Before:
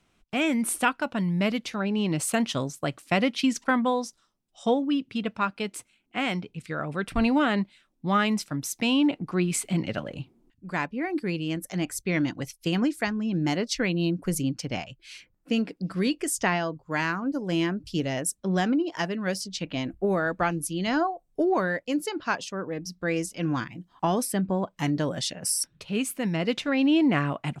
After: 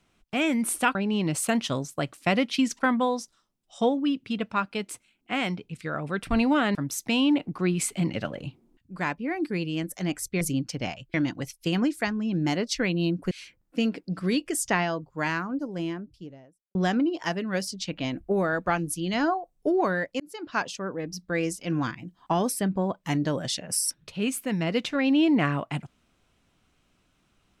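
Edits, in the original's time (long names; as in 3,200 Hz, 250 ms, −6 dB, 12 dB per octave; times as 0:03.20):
0:00.95–0:01.80: remove
0:07.60–0:08.48: remove
0:14.31–0:15.04: move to 0:12.14
0:16.81–0:18.48: fade out and dull
0:21.93–0:22.32: fade in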